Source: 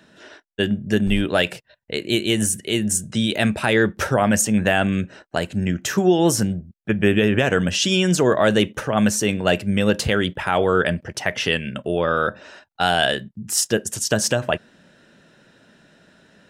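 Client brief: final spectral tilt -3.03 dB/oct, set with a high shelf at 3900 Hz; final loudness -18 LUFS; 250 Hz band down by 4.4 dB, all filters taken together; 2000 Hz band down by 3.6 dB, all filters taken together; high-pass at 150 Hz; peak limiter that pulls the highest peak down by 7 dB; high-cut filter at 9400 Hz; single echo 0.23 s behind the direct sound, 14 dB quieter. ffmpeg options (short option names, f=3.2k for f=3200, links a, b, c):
-af "highpass=150,lowpass=9.4k,equalizer=f=250:t=o:g=-5,equalizer=f=2k:t=o:g=-6.5,highshelf=f=3.9k:g=6,alimiter=limit=-10dB:level=0:latency=1,aecho=1:1:230:0.2,volume=5dB"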